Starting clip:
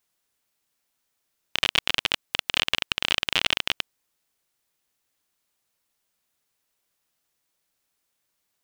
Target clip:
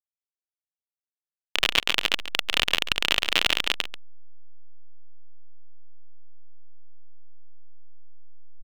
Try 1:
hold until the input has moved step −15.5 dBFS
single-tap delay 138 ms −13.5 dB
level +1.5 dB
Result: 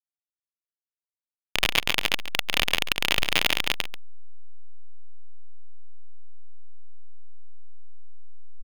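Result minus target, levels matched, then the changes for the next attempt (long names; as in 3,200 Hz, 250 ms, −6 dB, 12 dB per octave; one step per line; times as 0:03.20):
hold until the input has moved: distortion +7 dB
change: hold until the input has moved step −27.5 dBFS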